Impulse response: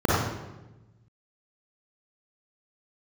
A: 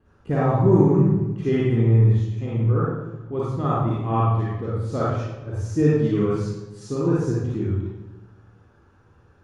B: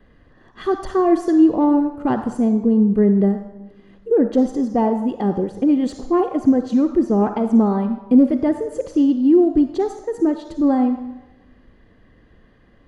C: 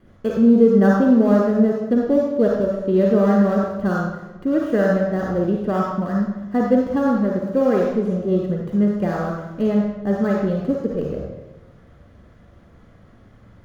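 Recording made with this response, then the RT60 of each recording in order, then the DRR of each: A; 1.1, 1.1, 1.1 s; -7.5, 8.5, -1.5 dB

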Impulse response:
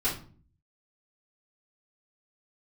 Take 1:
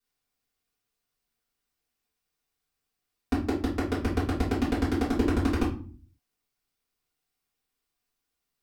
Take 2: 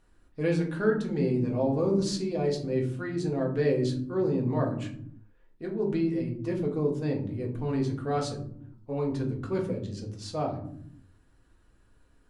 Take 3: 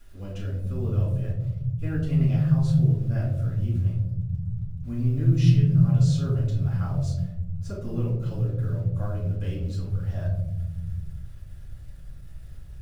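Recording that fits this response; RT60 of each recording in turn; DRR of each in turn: 1; 0.45 s, not exponential, 1.0 s; -10.5, -1.0, -8.0 dB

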